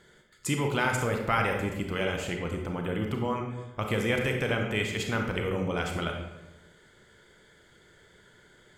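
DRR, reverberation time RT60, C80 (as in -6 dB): 2.0 dB, 1.0 s, 6.5 dB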